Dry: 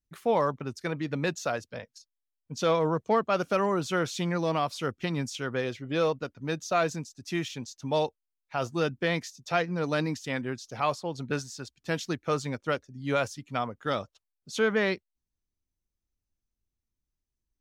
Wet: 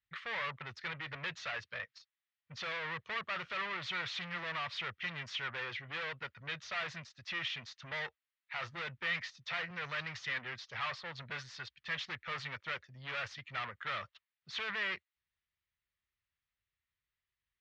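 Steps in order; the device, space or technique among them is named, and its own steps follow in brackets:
0:09.70–0:10.30: graphic EQ with 15 bands 100 Hz +6 dB, 250 Hz −11 dB, 6,300 Hz +6 dB
scooped metal amplifier (tube saturation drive 38 dB, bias 0.25; loudspeaker in its box 110–3,500 Hz, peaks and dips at 350 Hz +5 dB, 760 Hz −4 dB, 1,200 Hz +4 dB, 1,900 Hz +8 dB; guitar amp tone stack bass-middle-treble 10-0-10)
level +10 dB

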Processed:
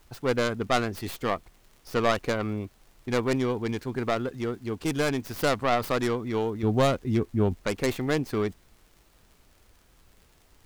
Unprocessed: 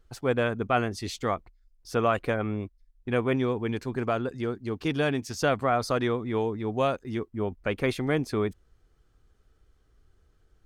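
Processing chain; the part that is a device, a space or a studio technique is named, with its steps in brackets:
0:06.63–0:07.57: low-shelf EQ 320 Hz +11 dB
record under a worn stylus (stylus tracing distortion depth 0.29 ms; surface crackle; pink noise bed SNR 34 dB)

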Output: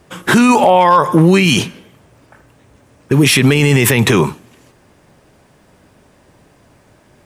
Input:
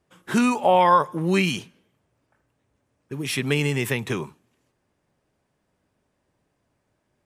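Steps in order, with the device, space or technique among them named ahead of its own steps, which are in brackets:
loud club master (downward compressor 1.5 to 1, threshold −23 dBFS, peak gain reduction 4.5 dB; hard clipping −12.5 dBFS, distortion −31 dB; boost into a limiter +24 dB)
level −1 dB

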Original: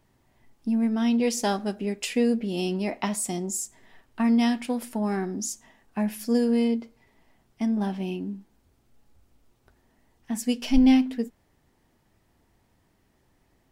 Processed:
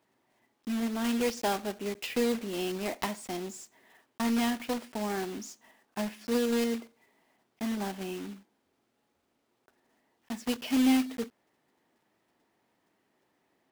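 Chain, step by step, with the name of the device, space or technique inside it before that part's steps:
early digital voice recorder (band-pass filter 270–3,900 Hz; one scale factor per block 3 bits)
level −3 dB

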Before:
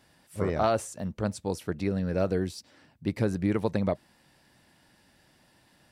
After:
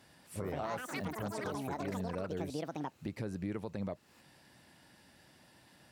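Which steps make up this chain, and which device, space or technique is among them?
delay with pitch and tempo change per echo 256 ms, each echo +7 semitones, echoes 3
podcast mastering chain (high-pass filter 61 Hz; de-essing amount 75%; downward compressor 2.5 to 1, threshold −39 dBFS, peak gain reduction 13 dB; brickwall limiter −28 dBFS, peak gain reduction 5.5 dB; level +1 dB; MP3 128 kbit/s 44,100 Hz)

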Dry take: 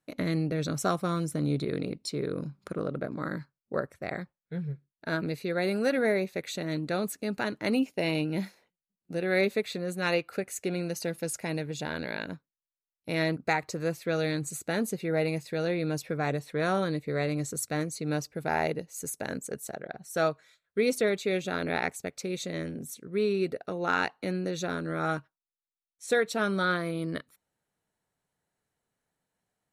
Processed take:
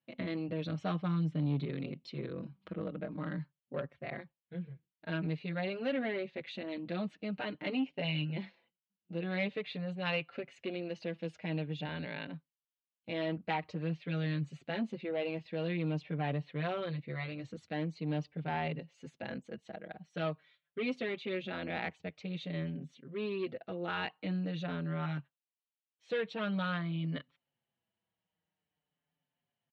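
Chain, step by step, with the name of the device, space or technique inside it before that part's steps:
barber-pole flanger into a guitar amplifier (barber-pole flanger 5.5 ms −0.47 Hz; soft clipping −23 dBFS, distortion −17 dB; loudspeaker in its box 81–3,600 Hz, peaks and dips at 160 Hz +5 dB, 410 Hz −5 dB, 1,400 Hz −5 dB, 3,000 Hz +9 dB)
level −2.5 dB

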